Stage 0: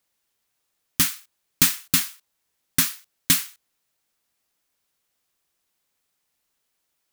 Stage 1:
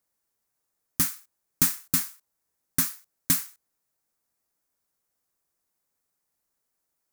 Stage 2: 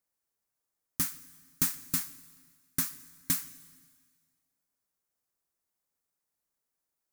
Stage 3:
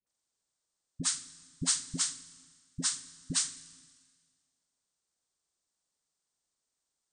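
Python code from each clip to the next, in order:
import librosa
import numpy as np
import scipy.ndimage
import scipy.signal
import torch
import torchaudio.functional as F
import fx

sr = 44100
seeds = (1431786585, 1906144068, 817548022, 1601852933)

y1 = fx.peak_eq(x, sr, hz=3100.0, db=-11.0, octaves=1.2)
y1 = F.gain(torch.from_numpy(y1), -3.0).numpy()
y2 = fx.rev_plate(y1, sr, seeds[0], rt60_s=1.7, hf_ratio=1.0, predelay_ms=110, drr_db=19.0)
y2 = F.gain(torch.from_numpy(y2), -6.0).numpy()
y3 = fx.freq_compress(y2, sr, knee_hz=1600.0, ratio=1.5)
y3 = fx.dispersion(y3, sr, late='highs', ms=68.0, hz=590.0)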